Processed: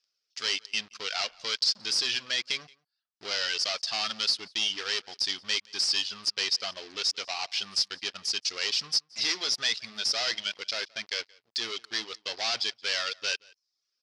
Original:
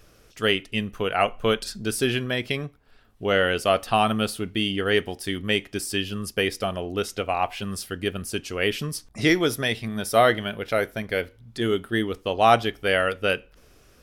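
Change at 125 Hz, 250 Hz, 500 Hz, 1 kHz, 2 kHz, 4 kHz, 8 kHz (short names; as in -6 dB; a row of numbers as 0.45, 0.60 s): under -25 dB, -23.0 dB, -19.0 dB, -15.5 dB, -6.5 dB, +3.0 dB, +2.0 dB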